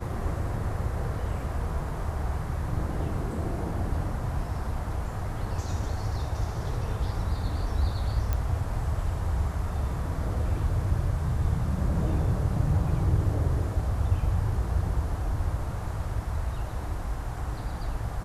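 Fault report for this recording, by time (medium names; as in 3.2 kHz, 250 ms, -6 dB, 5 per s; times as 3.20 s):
8.33 s: pop -15 dBFS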